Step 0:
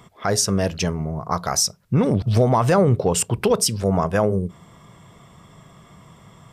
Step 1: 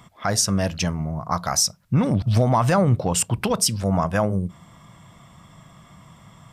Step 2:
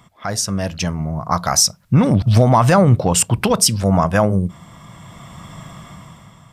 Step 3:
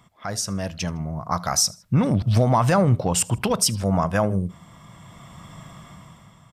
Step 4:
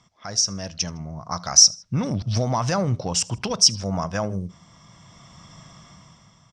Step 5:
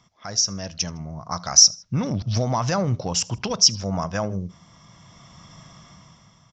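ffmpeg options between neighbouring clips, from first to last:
ffmpeg -i in.wav -af "equalizer=frequency=420:width_type=o:width=0.45:gain=-11.5" out.wav
ffmpeg -i in.wav -af "dynaudnorm=framelen=210:gausssize=9:maxgain=15dB,volume=-1dB" out.wav
ffmpeg -i in.wav -af "aecho=1:1:79|158:0.0668|0.0241,volume=-6dB" out.wav
ffmpeg -i in.wav -af "lowpass=frequency=5700:width_type=q:width=6.1,volume=-5dB" out.wav
ffmpeg -i in.wav -af "aresample=16000,aresample=44100" out.wav

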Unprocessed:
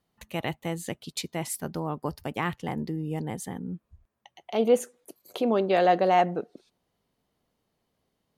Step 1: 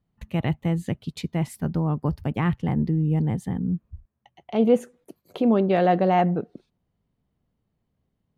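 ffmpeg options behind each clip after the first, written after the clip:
ffmpeg -i in.wav -af "agate=range=-6dB:threshold=-54dB:ratio=16:detection=peak,bass=frequency=250:gain=14,treble=frequency=4000:gain=-10" out.wav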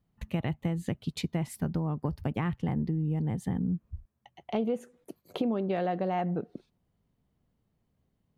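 ffmpeg -i in.wav -af "acompressor=threshold=-26dB:ratio=10" out.wav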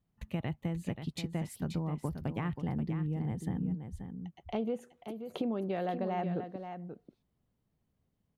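ffmpeg -i in.wav -af "aecho=1:1:532:0.376,volume=-4.5dB" out.wav

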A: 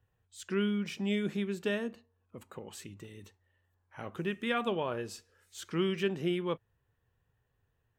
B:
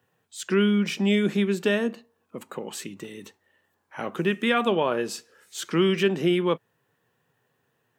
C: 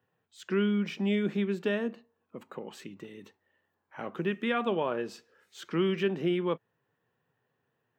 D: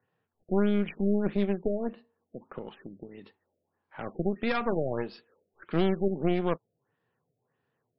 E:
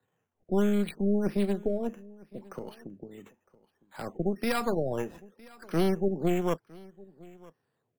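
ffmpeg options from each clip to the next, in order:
ffmpeg -i in.wav -filter_complex "[0:a]highpass=frequency=160:width=0.5412,highpass=frequency=160:width=1.3066,asplit=2[link_01][link_02];[link_02]alimiter=level_in=1.5dB:limit=-24dB:level=0:latency=1:release=152,volume=-1.5dB,volume=-1dB[link_03];[link_01][link_03]amix=inputs=2:normalize=0,volume=5.5dB" out.wav
ffmpeg -i in.wav -af "equalizer=frequency=10000:width=0.56:gain=-14.5,volume=-6dB" out.wav
ffmpeg -i in.wav -af "aeval=exprs='0.15*(cos(1*acos(clip(val(0)/0.15,-1,1)))-cos(1*PI/2))+0.0376*(cos(4*acos(clip(val(0)/0.15,-1,1)))-cos(4*PI/2))':channel_layout=same,afftfilt=real='re*lt(b*sr/1024,720*pow(5500/720,0.5+0.5*sin(2*PI*1.6*pts/sr)))':imag='im*lt(b*sr/1024,720*pow(5500/720,0.5+0.5*sin(2*PI*1.6*pts/sr)))':win_size=1024:overlap=0.75" out.wav
ffmpeg -i in.wav -filter_complex "[0:a]acrossover=split=140|810|1000[link_01][link_02][link_03][link_04];[link_04]acrusher=samples=8:mix=1:aa=0.000001:lfo=1:lforange=4.8:lforate=0.64[link_05];[link_01][link_02][link_03][link_05]amix=inputs=4:normalize=0,aecho=1:1:959:0.0708" out.wav

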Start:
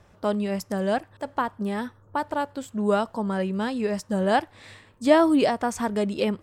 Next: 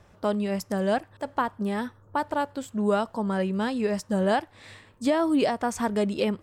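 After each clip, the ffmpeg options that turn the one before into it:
ffmpeg -i in.wav -af "alimiter=limit=-13dB:level=0:latency=1:release=412" out.wav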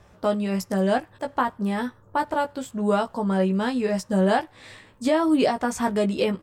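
ffmpeg -i in.wav -filter_complex "[0:a]asplit=2[link_01][link_02];[link_02]adelay=16,volume=-5dB[link_03];[link_01][link_03]amix=inputs=2:normalize=0,volume=1.5dB" out.wav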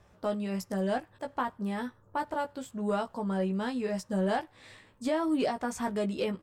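ffmpeg -i in.wav -af "asoftclip=type=tanh:threshold=-10.5dB,volume=-7.5dB" out.wav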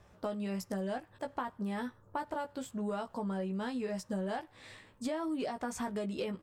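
ffmpeg -i in.wav -af "acompressor=threshold=-33dB:ratio=6" out.wav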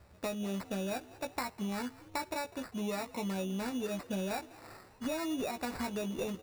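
ffmpeg -i in.wav -filter_complex "[0:a]equalizer=frequency=78:width=7.5:gain=12,acrusher=samples=14:mix=1:aa=0.000001,asplit=6[link_01][link_02][link_03][link_04][link_05][link_06];[link_02]adelay=200,afreqshift=60,volume=-20dB[link_07];[link_03]adelay=400,afreqshift=120,volume=-24.9dB[link_08];[link_04]adelay=600,afreqshift=180,volume=-29.8dB[link_09];[link_05]adelay=800,afreqshift=240,volume=-34.6dB[link_10];[link_06]adelay=1000,afreqshift=300,volume=-39.5dB[link_11];[link_01][link_07][link_08][link_09][link_10][link_11]amix=inputs=6:normalize=0" out.wav

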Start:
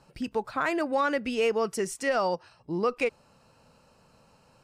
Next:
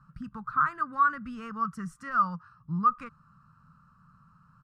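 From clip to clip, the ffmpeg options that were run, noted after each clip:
ffmpeg -i in.wav -af "firequalizer=gain_entry='entry(100,0);entry(160,7);entry(360,-27);entry(780,-22);entry(1200,10);entry(2200,-20)':delay=0.05:min_phase=1,volume=1dB" out.wav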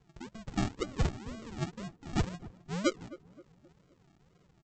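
ffmpeg -i in.wav -filter_complex "[0:a]aresample=16000,acrusher=samples=25:mix=1:aa=0.000001:lfo=1:lforange=15:lforate=2,aresample=44100,asplit=2[link_01][link_02];[link_02]adelay=262,lowpass=frequency=990:poles=1,volume=-17dB,asplit=2[link_03][link_04];[link_04]adelay=262,lowpass=frequency=990:poles=1,volume=0.46,asplit=2[link_05][link_06];[link_06]adelay=262,lowpass=frequency=990:poles=1,volume=0.46,asplit=2[link_07][link_08];[link_08]adelay=262,lowpass=frequency=990:poles=1,volume=0.46[link_09];[link_01][link_03][link_05][link_07][link_09]amix=inputs=5:normalize=0,volume=-5.5dB" out.wav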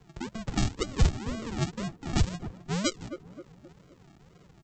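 ffmpeg -i in.wav -filter_complex "[0:a]acrossover=split=120|3000[link_01][link_02][link_03];[link_02]acompressor=threshold=-38dB:ratio=4[link_04];[link_01][link_04][link_03]amix=inputs=3:normalize=0,volume=9dB" out.wav

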